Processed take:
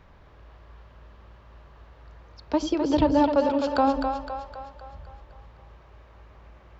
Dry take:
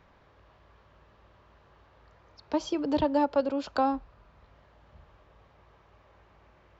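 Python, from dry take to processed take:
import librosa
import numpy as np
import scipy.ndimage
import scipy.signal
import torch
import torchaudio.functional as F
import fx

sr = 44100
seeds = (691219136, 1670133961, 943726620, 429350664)

y = fx.low_shelf(x, sr, hz=89.0, db=9.5)
y = fx.echo_split(y, sr, split_hz=440.0, low_ms=89, high_ms=257, feedback_pct=52, wet_db=-5.5)
y = y * 10.0 ** (3.5 / 20.0)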